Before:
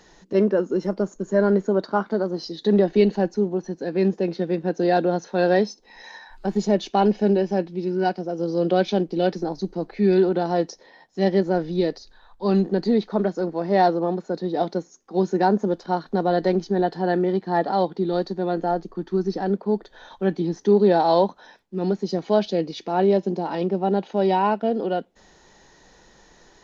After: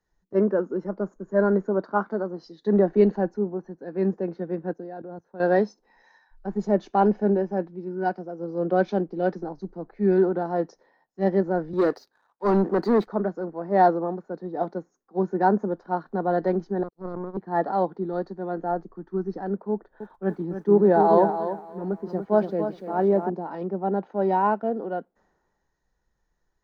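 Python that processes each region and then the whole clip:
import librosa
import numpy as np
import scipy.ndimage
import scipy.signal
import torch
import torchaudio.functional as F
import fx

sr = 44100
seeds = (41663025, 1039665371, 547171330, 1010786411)

y = fx.chain(x, sr, fx.peak_eq(hz=2400.0, db=-5.0, octaves=2.8),
    fx.level_steps(step_db=14), at=(4.73, 5.4))
y = fx.chain(y, sr, fx.highpass(hz=240.0, slope=12),
    fx.leveller(passes=2), at=(11.73, 13.07))
y = fx.chain(y, sr, fx.cheby1_bandstop(low_hz=540.0, high_hz=3700.0, order=4),
    fx.transient(attack_db=5, sustain_db=-6),
    fx.power_curve(exponent=2.0), at=(16.83, 17.37))
y = fx.chain(y, sr, fx.air_absorb(metres=94.0),
    fx.echo_crushed(ms=291, feedback_pct=35, bits=8, wet_db=-6), at=(19.71, 23.3))
y = fx.high_shelf_res(y, sr, hz=2100.0, db=-12.5, q=1.5)
y = fx.band_widen(y, sr, depth_pct=70)
y = y * librosa.db_to_amplitude(-3.5)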